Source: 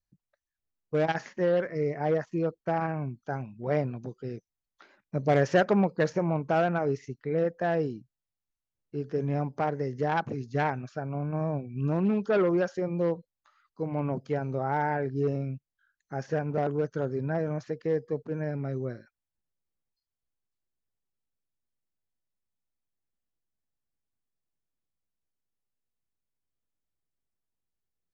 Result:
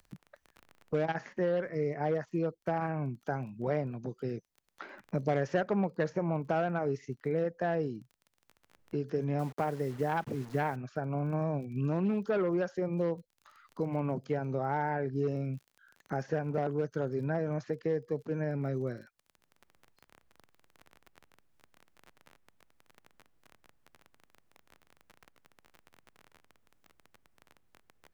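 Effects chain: 9.39–10.76 requantised 8-bit, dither none; crackle 27/s -49 dBFS; three-band squash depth 70%; gain -4 dB

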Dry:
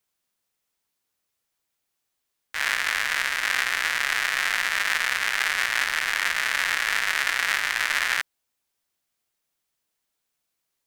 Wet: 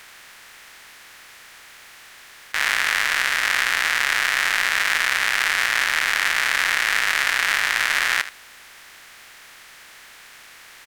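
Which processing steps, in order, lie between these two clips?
per-bin compression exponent 0.4; echo 77 ms -13.5 dB

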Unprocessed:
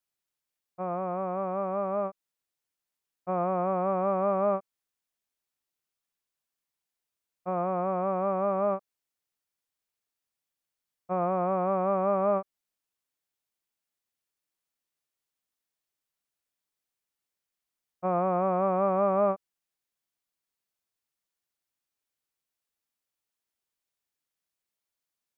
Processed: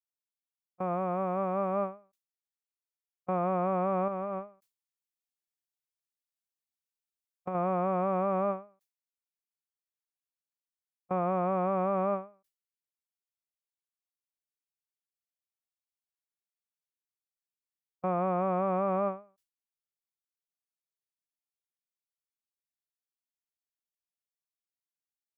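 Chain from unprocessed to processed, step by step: limiter -20.5 dBFS, peak gain reduction 6 dB; low shelf 280 Hz +6 dB; gate with hold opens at -25 dBFS; 4.08–7.55 negative-ratio compressor -33 dBFS, ratio -1; high shelf 2100 Hz +10.5 dB; ending taper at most 170 dB/s; gain -2 dB

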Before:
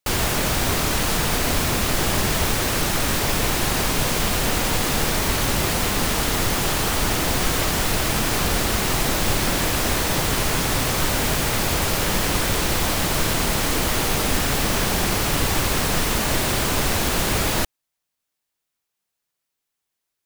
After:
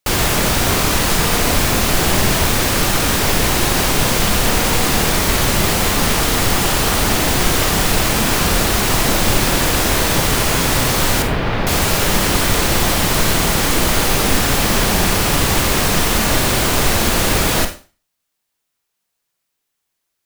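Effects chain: 11.22–11.67 air absorption 330 m; Schroeder reverb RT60 0.35 s, combs from 32 ms, DRR 7 dB; gain +5 dB

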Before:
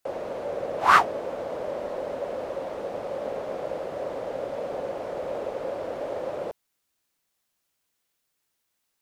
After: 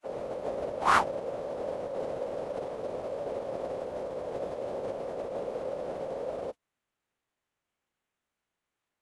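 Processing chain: median filter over 9 samples; dynamic EQ 1700 Hz, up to -5 dB, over -45 dBFS, Q 0.81; formant-preserving pitch shift -11.5 st

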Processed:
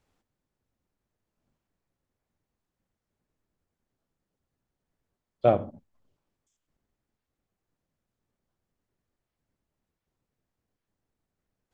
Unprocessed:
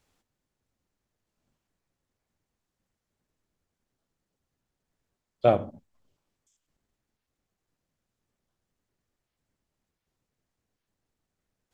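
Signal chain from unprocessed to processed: high shelf 2400 Hz -7.5 dB

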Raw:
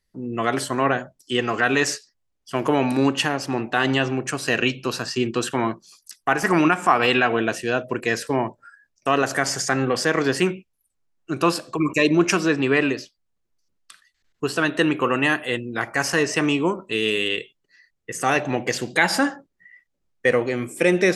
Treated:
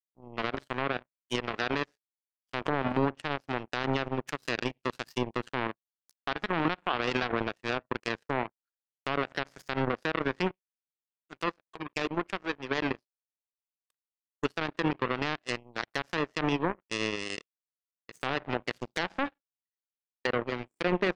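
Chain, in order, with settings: treble ducked by the level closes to 1500 Hz, closed at -17 dBFS; 10.51–12.82 low shelf 350 Hz -9.5 dB; limiter -14 dBFS, peak gain reduction 8.5 dB; power-law curve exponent 3

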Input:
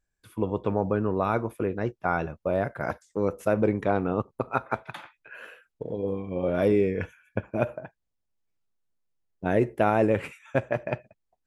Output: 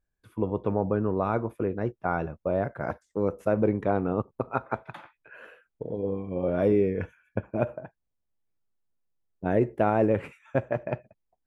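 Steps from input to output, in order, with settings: high shelf 2200 Hz -11.5 dB

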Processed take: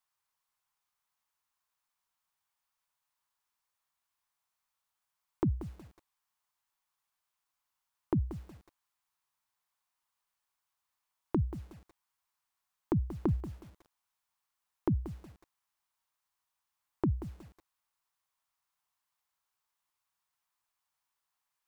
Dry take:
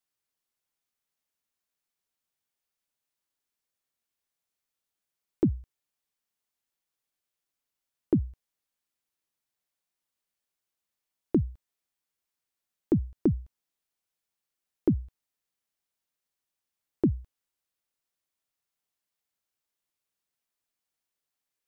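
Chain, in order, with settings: ten-band EQ 250 Hz -8 dB, 500 Hz -7 dB, 1000 Hz +12 dB; lo-fi delay 0.183 s, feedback 35%, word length 8-bit, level -12.5 dB

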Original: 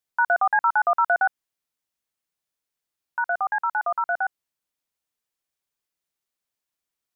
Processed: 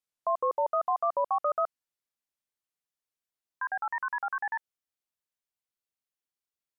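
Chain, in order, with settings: speed glide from 68% -> 143%; gain -7.5 dB

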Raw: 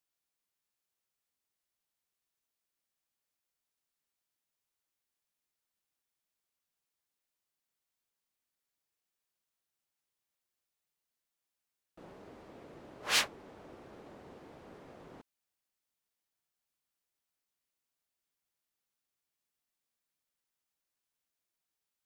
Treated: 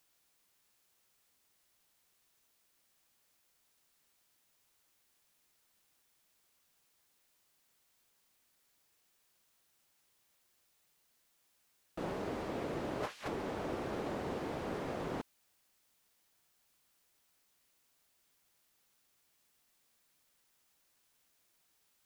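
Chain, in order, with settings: negative-ratio compressor -48 dBFS, ratio -1; gain +8 dB

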